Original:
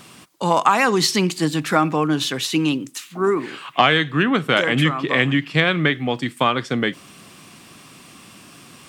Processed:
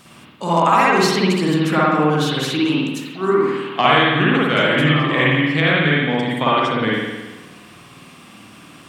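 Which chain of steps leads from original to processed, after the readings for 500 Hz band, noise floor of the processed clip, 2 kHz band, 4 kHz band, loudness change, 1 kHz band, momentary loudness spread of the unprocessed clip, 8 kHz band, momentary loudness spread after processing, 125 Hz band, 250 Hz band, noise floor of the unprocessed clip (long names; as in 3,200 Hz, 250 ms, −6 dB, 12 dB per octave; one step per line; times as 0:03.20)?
+3.5 dB, −44 dBFS, +2.5 dB, +1.0 dB, +2.5 dB, +3.0 dB, 7 LU, −4.0 dB, 8 LU, +3.5 dB, +2.5 dB, −46 dBFS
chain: spring reverb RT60 1.2 s, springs 53 ms, chirp 35 ms, DRR −6 dB
level −4 dB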